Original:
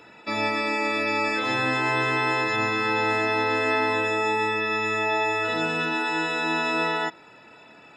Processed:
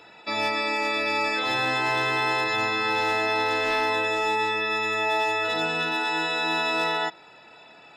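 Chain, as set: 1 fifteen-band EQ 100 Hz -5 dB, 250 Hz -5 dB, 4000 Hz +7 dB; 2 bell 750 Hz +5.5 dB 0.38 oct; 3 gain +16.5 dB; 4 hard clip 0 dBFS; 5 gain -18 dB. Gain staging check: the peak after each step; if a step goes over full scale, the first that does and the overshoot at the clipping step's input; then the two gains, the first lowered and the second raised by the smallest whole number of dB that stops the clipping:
-11.0, -10.5, +6.0, 0.0, -18.0 dBFS; step 3, 6.0 dB; step 3 +10.5 dB, step 5 -12 dB

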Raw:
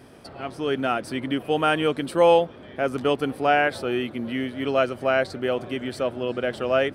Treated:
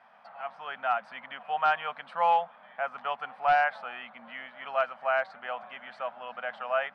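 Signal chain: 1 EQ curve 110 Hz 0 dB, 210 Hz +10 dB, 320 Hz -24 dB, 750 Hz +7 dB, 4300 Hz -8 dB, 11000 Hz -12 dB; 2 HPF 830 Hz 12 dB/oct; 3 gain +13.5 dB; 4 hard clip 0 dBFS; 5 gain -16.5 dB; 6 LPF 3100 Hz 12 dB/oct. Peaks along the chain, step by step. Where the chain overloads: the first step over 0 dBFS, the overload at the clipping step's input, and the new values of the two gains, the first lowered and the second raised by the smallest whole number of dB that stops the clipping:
-5.0, -9.0, +4.5, 0.0, -16.5, -16.0 dBFS; step 3, 4.5 dB; step 3 +8.5 dB, step 5 -11.5 dB

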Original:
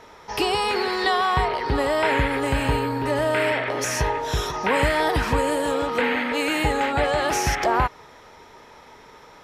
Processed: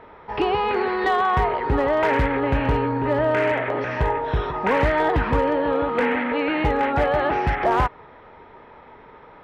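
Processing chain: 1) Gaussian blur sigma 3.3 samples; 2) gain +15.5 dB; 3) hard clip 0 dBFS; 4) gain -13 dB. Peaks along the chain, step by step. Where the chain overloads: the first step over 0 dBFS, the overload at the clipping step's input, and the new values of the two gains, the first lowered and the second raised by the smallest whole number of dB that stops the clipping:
-8.0, +7.5, 0.0, -13.0 dBFS; step 2, 7.5 dB; step 2 +7.5 dB, step 4 -5 dB

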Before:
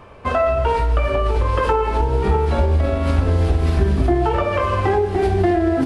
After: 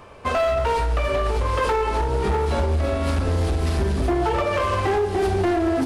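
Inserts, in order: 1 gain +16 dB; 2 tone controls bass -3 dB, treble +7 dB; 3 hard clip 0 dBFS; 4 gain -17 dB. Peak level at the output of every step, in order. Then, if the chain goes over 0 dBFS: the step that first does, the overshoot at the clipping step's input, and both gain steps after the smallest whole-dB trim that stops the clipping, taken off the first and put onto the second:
+9.5, +10.0, 0.0, -17.0 dBFS; step 1, 10.0 dB; step 1 +6 dB, step 4 -7 dB

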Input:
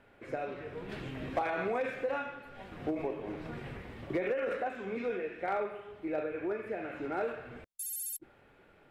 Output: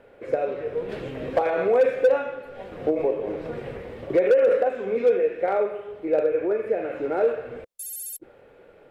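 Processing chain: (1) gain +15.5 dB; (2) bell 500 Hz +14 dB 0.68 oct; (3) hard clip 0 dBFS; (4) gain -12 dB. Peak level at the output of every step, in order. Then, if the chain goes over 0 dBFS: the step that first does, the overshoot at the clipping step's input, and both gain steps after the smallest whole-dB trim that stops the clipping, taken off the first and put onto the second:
-7.0, +5.0, 0.0, -12.0 dBFS; step 2, 5.0 dB; step 1 +10.5 dB, step 4 -7 dB

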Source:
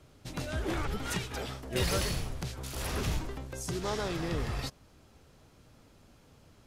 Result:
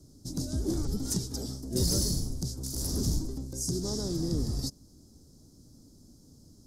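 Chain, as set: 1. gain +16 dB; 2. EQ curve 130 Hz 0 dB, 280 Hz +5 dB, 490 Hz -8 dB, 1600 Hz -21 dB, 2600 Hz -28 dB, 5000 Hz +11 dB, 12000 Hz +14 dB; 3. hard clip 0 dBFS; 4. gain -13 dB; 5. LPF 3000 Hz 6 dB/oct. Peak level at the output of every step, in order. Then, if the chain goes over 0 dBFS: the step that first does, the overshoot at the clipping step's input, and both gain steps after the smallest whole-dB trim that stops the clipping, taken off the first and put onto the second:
-1.5, +4.0, 0.0, -13.0, -16.0 dBFS; step 2, 4.0 dB; step 1 +12 dB, step 4 -9 dB

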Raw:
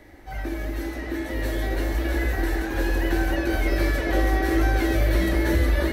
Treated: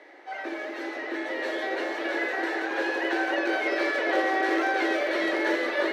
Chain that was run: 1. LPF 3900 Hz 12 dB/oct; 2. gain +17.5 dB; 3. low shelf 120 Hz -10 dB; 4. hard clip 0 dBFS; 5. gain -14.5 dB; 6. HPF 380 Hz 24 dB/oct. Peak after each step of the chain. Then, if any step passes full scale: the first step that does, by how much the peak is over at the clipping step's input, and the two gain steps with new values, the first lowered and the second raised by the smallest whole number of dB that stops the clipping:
-10.5, +7.0, +4.5, 0.0, -14.5, -13.5 dBFS; step 2, 4.5 dB; step 2 +12.5 dB, step 5 -9.5 dB

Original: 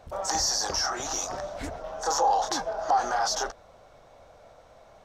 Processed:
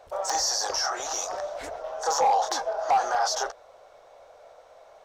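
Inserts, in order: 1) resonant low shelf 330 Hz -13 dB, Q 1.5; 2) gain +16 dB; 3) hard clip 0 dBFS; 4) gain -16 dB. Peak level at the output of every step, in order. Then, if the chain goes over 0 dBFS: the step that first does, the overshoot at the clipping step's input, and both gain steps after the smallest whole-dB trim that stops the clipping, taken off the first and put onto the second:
-9.5, +6.5, 0.0, -16.0 dBFS; step 2, 6.5 dB; step 2 +9 dB, step 4 -9 dB

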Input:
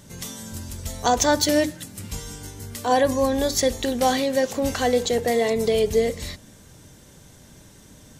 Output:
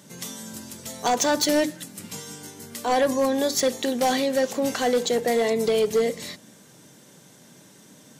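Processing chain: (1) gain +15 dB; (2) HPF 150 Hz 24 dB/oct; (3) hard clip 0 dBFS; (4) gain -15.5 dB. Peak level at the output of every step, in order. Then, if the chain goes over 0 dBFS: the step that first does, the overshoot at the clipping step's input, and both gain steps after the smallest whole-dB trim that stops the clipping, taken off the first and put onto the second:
+10.0, +9.0, 0.0, -15.5 dBFS; step 1, 9.0 dB; step 1 +6 dB, step 4 -6.5 dB

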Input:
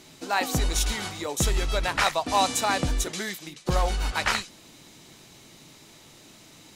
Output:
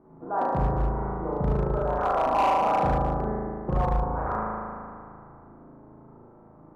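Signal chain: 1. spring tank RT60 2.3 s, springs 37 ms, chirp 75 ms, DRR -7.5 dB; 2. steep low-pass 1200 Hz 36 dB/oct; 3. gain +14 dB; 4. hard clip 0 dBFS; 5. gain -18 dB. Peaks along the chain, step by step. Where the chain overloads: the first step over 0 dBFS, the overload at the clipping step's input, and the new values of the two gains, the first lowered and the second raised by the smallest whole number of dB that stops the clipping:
-3.0, -5.0, +9.0, 0.0, -18.0 dBFS; step 3, 9.0 dB; step 3 +5 dB, step 5 -9 dB

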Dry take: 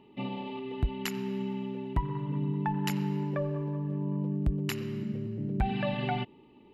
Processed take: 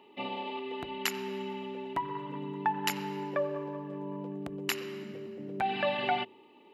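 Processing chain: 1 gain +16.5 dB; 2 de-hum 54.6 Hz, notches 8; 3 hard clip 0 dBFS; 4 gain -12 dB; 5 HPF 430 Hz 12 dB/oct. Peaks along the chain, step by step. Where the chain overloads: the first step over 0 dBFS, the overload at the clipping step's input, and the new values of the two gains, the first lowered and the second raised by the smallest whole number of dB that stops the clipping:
-2.0, -1.5, -1.5, -13.5, -14.5 dBFS; no overload

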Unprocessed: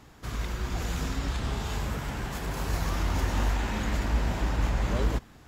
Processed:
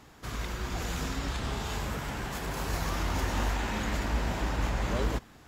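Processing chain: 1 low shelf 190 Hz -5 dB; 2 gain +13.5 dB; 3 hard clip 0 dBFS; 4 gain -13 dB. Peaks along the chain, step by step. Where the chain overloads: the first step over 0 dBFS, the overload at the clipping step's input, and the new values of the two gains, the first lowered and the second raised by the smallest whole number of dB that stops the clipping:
-18.0, -4.5, -4.5, -17.5 dBFS; no overload

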